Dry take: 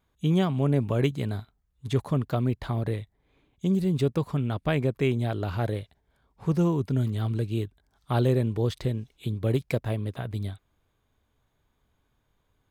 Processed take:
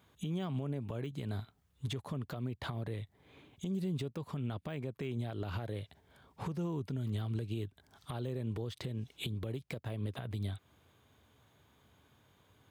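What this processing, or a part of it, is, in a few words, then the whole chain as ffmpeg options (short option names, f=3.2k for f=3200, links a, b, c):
broadcast voice chain: -af "highpass=f=76:w=0.5412,highpass=f=76:w=1.3066,deesser=0.9,acompressor=threshold=-36dB:ratio=5,equalizer=f=3.1k:t=o:w=0.53:g=3,alimiter=level_in=12dB:limit=-24dB:level=0:latency=1:release=246,volume=-12dB,volume=7.5dB"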